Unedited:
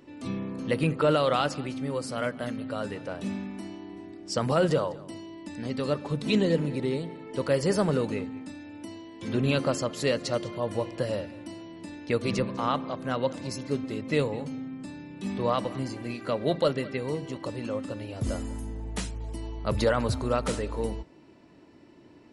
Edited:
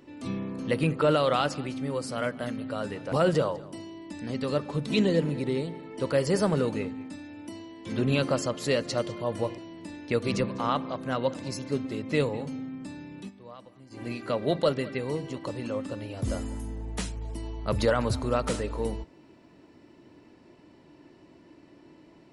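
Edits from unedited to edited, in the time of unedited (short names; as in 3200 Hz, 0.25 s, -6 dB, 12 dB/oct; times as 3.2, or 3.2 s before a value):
3.12–4.48 cut
10.94–11.57 cut
15.18–16.01 dip -20 dB, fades 0.12 s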